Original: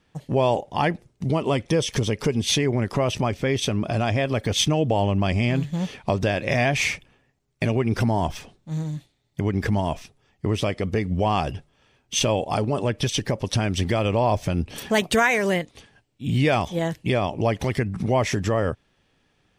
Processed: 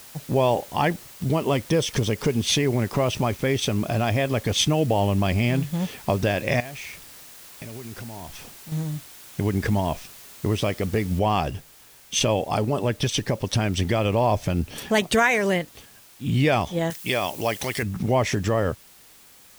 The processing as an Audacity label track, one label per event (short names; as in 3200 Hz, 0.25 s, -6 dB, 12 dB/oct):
3.050000	3.550000	sample gate under -43 dBFS
6.600000	8.720000	compressor 4:1, threshold -37 dBFS
11.190000	11.190000	noise floor step -45 dB -51 dB
16.900000	17.830000	tilt +3 dB/oct